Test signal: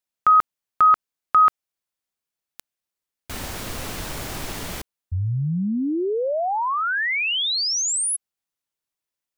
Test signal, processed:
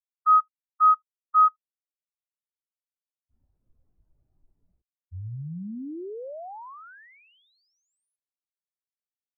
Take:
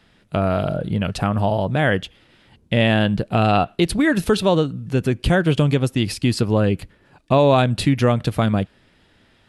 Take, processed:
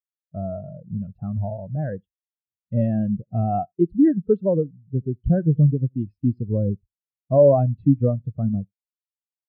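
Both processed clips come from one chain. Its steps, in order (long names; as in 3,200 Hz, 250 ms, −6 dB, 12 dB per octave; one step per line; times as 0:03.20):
high-shelf EQ 2,700 Hz −11.5 dB
single-tap delay 78 ms −20 dB
every bin expanded away from the loudest bin 2.5 to 1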